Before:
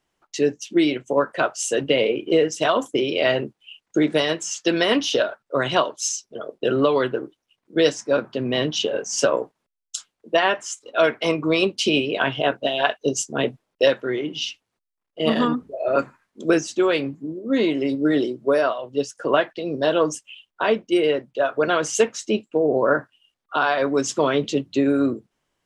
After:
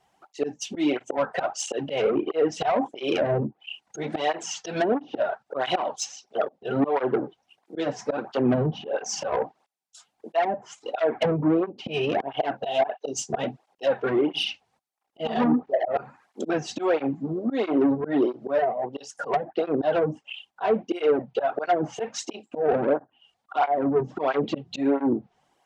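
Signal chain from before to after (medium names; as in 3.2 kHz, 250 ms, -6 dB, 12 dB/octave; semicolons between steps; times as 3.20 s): slow attack 282 ms; peaking EQ 780 Hz +15 dB 0.43 oct; low-pass that closes with the level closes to 350 Hz, closed at -16.5 dBFS; saturation -20.5 dBFS, distortion -13 dB; cancelling through-zero flanger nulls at 1.5 Hz, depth 3.8 ms; trim +7.5 dB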